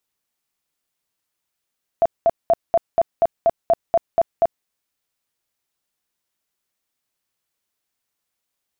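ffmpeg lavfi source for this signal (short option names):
-f lavfi -i "aevalsrc='0.282*sin(2*PI*673*mod(t,0.24))*lt(mod(t,0.24),24/673)':d=2.64:s=44100"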